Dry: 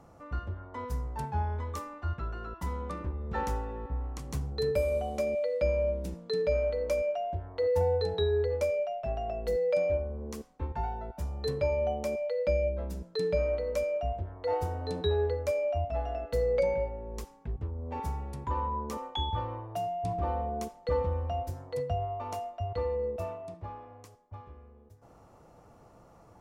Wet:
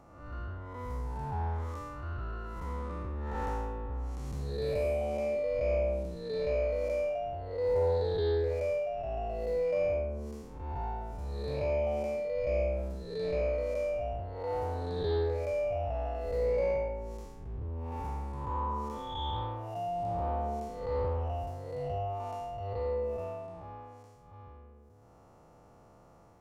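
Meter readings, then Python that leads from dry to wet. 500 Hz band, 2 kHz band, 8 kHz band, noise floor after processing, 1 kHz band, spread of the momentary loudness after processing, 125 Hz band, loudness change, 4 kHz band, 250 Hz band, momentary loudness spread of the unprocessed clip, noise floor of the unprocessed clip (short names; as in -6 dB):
-1.5 dB, -2.5 dB, n/a, -58 dBFS, -1.5 dB, 11 LU, -2.0 dB, -1.5 dB, -5.5 dB, -1.5 dB, 10 LU, -57 dBFS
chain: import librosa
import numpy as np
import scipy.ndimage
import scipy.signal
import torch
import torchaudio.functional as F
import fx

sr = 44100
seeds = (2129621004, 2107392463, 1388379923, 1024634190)

y = fx.spec_blur(x, sr, span_ms=232.0)
y = fx.doppler_dist(y, sr, depth_ms=0.19)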